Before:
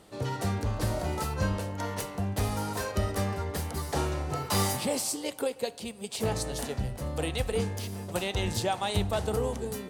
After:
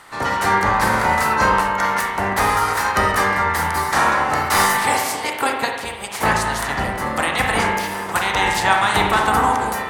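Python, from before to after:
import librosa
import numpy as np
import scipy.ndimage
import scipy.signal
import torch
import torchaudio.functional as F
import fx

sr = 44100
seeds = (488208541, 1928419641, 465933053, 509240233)

y = fx.spec_clip(x, sr, under_db=16)
y = fx.band_shelf(y, sr, hz=1300.0, db=10.5, octaves=1.7)
y = fx.rev_spring(y, sr, rt60_s=1.1, pass_ms=(36, 49), chirp_ms=40, drr_db=1.5)
y = F.gain(torch.from_numpy(y), 5.0).numpy()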